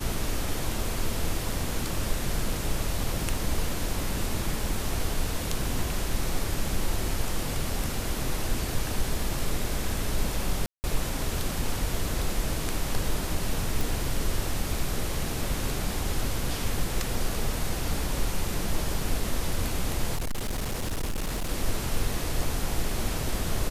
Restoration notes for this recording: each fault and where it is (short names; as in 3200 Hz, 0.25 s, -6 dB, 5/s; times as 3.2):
10.66–10.84 gap 0.179 s
13.81 pop
20.15–21.51 clipped -25.5 dBFS